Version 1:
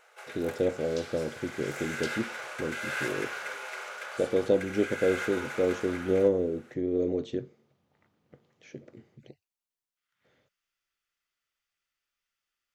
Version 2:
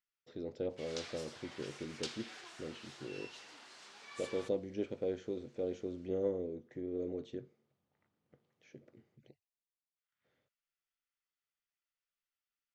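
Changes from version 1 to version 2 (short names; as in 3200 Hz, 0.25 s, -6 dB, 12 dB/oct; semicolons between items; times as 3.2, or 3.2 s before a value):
speech -11.0 dB; first sound: muted; master: add LPF 7800 Hz 12 dB/oct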